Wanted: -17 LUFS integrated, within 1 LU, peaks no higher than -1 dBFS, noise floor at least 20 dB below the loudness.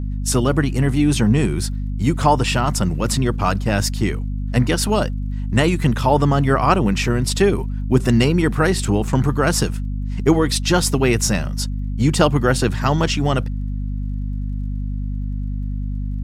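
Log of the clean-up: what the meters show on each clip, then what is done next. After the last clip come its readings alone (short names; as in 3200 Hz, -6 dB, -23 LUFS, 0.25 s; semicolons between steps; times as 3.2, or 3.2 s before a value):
ticks 33/s; hum 50 Hz; harmonics up to 250 Hz; hum level -21 dBFS; loudness -19.5 LUFS; peak -1.0 dBFS; loudness target -17.0 LUFS
-> de-click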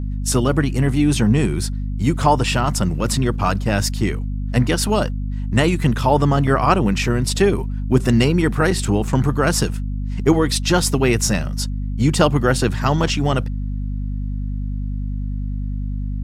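ticks 0/s; hum 50 Hz; harmonics up to 250 Hz; hum level -21 dBFS
-> notches 50/100/150/200/250 Hz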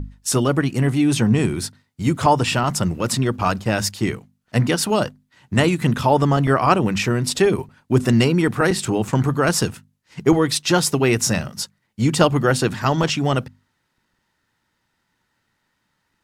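hum none; loudness -19.5 LUFS; peak -1.5 dBFS; loudness target -17.0 LUFS
-> gain +2.5 dB; limiter -1 dBFS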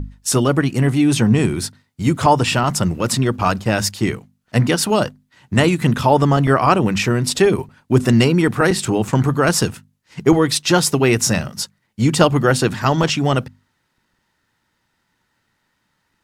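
loudness -17.0 LUFS; peak -1.0 dBFS; noise floor -69 dBFS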